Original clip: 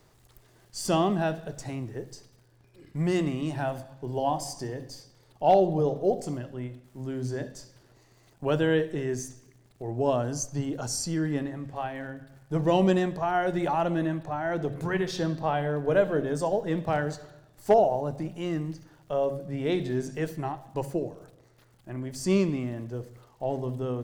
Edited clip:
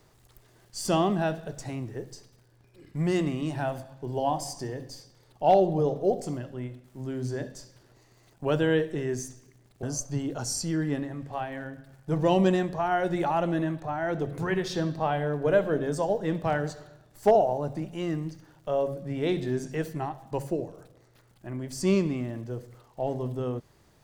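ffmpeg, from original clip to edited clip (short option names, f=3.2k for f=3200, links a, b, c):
-filter_complex "[0:a]asplit=2[a][b];[a]atrim=end=9.832[c];[b]atrim=start=10.258[d];[c][d]acrossfade=d=0.004:c1=hsin:c2=hsin"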